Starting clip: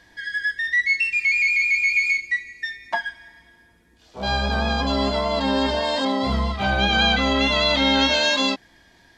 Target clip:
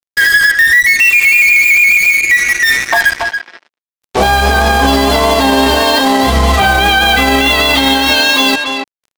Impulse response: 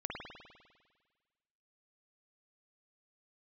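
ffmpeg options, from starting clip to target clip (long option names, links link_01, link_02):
-filter_complex "[0:a]lowshelf=frequency=80:gain=-7,asplit=2[link_01][link_02];[1:a]atrim=start_sample=2205,atrim=end_sample=4410,adelay=16[link_03];[link_02][link_03]afir=irnorm=-1:irlink=0,volume=-21.5dB[link_04];[link_01][link_04]amix=inputs=2:normalize=0,acompressor=threshold=-27dB:ratio=20,aecho=1:1:2.6:0.54,asplit=2[link_05][link_06];[link_06]asoftclip=type=tanh:threshold=-34dB,volume=-9dB[link_07];[link_05][link_07]amix=inputs=2:normalize=0,highshelf=frequency=7000:gain=-4,acrusher=bits=5:mix=0:aa=0.5,asplit=2[link_08][link_09];[link_09]adelay=280,highpass=300,lowpass=3400,asoftclip=type=hard:threshold=-28dB,volume=-8dB[link_10];[link_08][link_10]amix=inputs=2:normalize=0,alimiter=level_in=24.5dB:limit=-1dB:release=50:level=0:latency=1,volume=-1dB"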